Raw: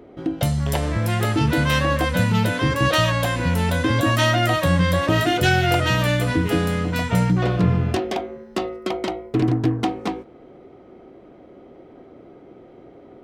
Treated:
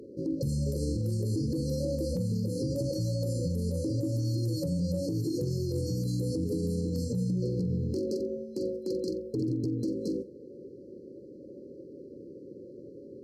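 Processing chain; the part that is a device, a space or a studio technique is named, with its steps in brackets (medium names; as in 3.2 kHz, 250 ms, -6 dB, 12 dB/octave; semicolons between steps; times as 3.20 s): 3.88–5.58 s: comb 6.6 ms, depth 42%; hum notches 50/100/150/200/250/300 Hz; flutter echo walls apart 7.6 m, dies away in 0.2 s; FFT band-reject 580–4100 Hz; podcast mastering chain (high-pass 88 Hz 12 dB/octave; de-esser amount 80%; compression 3:1, threshold -24 dBFS, peak gain reduction 8.5 dB; peak limiter -22.5 dBFS, peak gain reduction 8.5 dB; MP3 128 kbps 32 kHz)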